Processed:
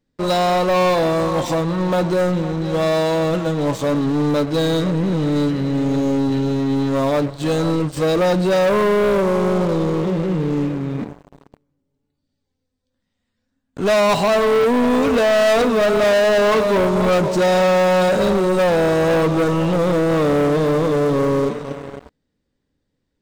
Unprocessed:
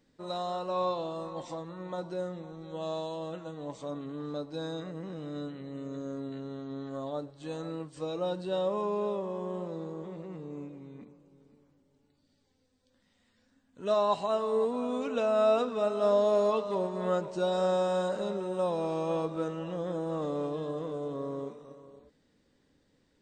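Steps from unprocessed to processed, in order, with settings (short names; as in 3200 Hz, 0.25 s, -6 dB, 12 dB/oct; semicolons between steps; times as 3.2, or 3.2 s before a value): low shelf 140 Hz +9.5 dB; sample leveller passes 5; gain +2.5 dB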